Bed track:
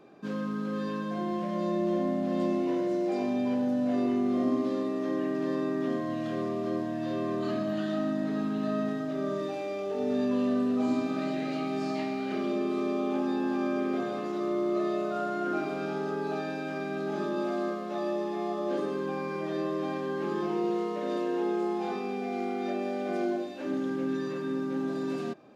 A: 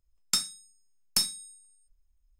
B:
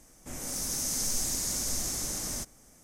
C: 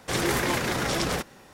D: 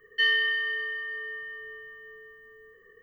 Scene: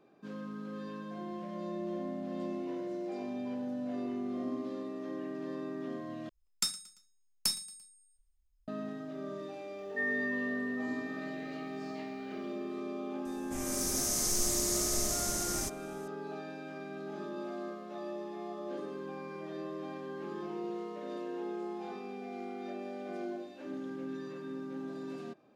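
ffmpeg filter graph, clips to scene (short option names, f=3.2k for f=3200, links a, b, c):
-filter_complex "[0:a]volume=-9.5dB[a];[1:a]aecho=1:1:114|228|342:0.0891|0.0419|0.0197[b];[4:a]asuperstop=centerf=3600:order=8:qfactor=0.77[c];[a]asplit=2[d][e];[d]atrim=end=6.294[f];[b]atrim=end=2.39,asetpts=PTS-STARTPTS,volume=-5.5dB[g];[e]atrim=start=8.676[h];[c]atrim=end=3.02,asetpts=PTS-STARTPTS,volume=-7.5dB,afade=t=in:d=0.004:c=hsin,afade=t=out:st=3.016:d=0.004:c=hsin,adelay=431298S[i];[2:a]atrim=end=2.83,asetpts=PTS-STARTPTS,volume=-0.5dB,afade=t=in:d=0.004:c=hsin,afade=t=out:st=2.826:d=0.004:c=hsin,adelay=13250[j];[f][g]acrossfade=d=0.004:c1=hsin:c2=hsin[k];[k][h]acrossfade=d=0.004:c1=hsin:c2=hsin[l];[l][i][j]amix=inputs=3:normalize=0"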